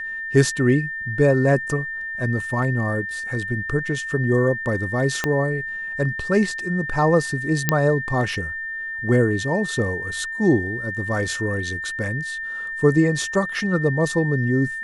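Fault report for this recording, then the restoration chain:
whistle 1,800 Hz −27 dBFS
0:05.24: click −7 dBFS
0:07.69: click −2 dBFS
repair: click removal
notch filter 1,800 Hz, Q 30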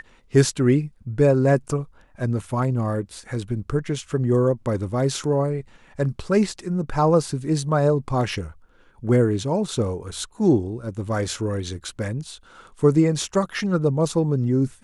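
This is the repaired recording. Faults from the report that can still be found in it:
0:05.24: click

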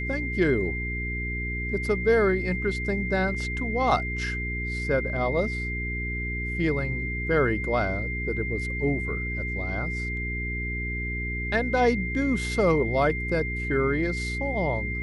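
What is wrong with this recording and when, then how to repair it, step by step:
mains hum 60 Hz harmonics 7 −32 dBFS
whistle 2,100 Hz −31 dBFS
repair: hum removal 60 Hz, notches 7
notch filter 2,100 Hz, Q 30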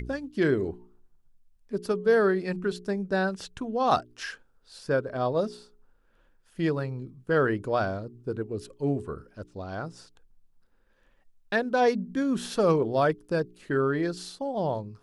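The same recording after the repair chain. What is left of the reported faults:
none of them is left

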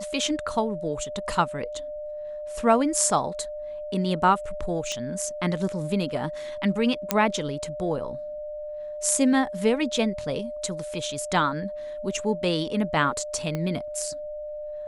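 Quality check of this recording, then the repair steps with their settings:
whistle 600 Hz −32 dBFS
0:04.92: click −18 dBFS
0:07.11: click −4 dBFS
0:13.55: click −16 dBFS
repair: click removal
notch filter 600 Hz, Q 30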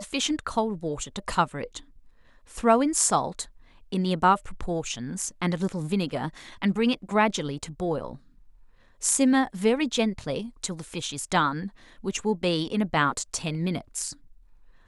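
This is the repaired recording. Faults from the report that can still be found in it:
0:13.55: click

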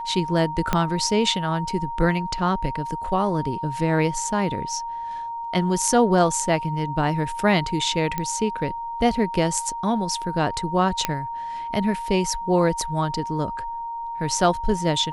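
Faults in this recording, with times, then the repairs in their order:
whistle 930 Hz −28 dBFS
0:00.73: click −6 dBFS
0:08.18: click −11 dBFS
0:11.05: click −5 dBFS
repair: click removal
notch filter 930 Hz, Q 30

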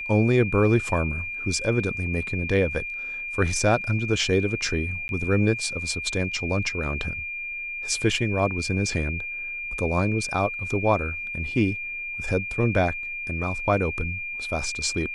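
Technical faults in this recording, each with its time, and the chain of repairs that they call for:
whistle 2,400 Hz −30 dBFS
0:05.08–0:05.09: drop-out 11 ms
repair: notch filter 2,400 Hz, Q 30
repair the gap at 0:05.08, 11 ms

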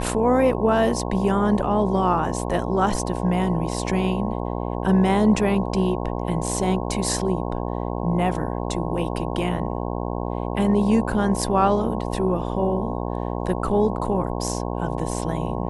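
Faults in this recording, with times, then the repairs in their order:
mains buzz 60 Hz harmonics 18 −27 dBFS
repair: hum removal 60 Hz, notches 18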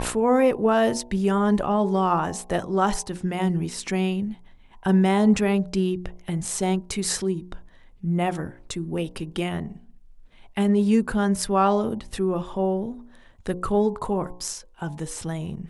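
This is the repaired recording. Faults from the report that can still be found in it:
none of them is left

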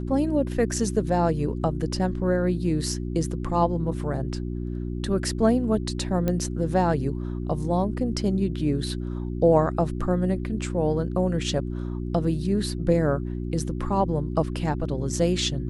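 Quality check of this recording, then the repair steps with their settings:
mains hum 60 Hz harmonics 6 −30 dBFS
0:06.28: click −13 dBFS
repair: click removal
hum removal 60 Hz, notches 6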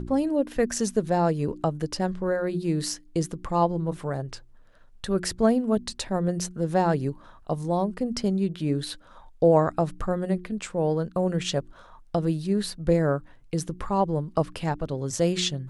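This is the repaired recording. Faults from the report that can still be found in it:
none of them is left

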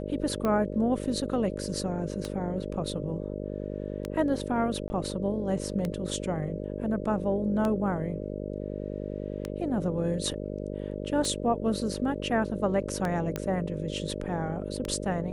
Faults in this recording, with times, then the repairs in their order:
mains buzz 50 Hz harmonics 12 −35 dBFS
scratch tick 33 1/3 rpm −17 dBFS
0:04.88–0:04.90: drop-out 20 ms
0:13.36: click −16 dBFS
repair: click removal
hum removal 50 Hz, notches 12
repair the gap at 0:04.88, 20 ms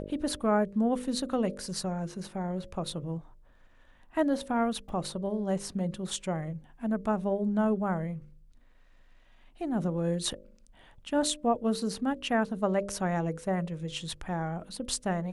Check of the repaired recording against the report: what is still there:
none of them is left

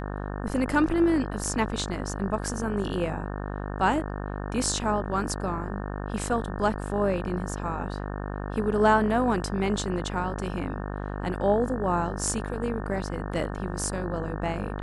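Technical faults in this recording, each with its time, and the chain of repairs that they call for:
mains buzz 50 Hz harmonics 36 −33 dBFS
0:01.44: drop-out 3.7 ms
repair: hum removal 50 Hz, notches 36
repair the gap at 0:01.44, 3.7 ms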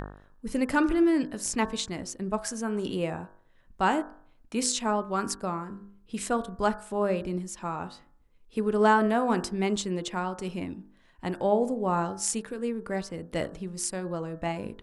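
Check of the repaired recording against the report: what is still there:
none of them is left

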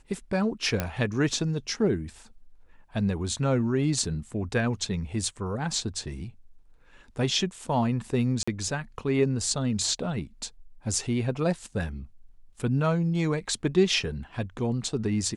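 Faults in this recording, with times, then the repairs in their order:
0:00.80: click −11 dBFS
0:08.43–0:08.47: drop-out 45 ms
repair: click removal
repair the gap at 0:08.43, 45 ms

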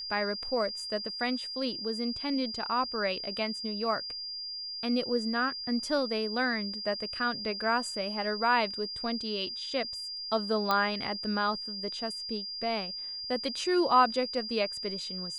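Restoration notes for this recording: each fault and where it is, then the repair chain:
whistle 4,800 Hz −36 dBFS
0:10.71: click −14 dBFS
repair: click removal
notch filter 4,800 Hz, Q 30

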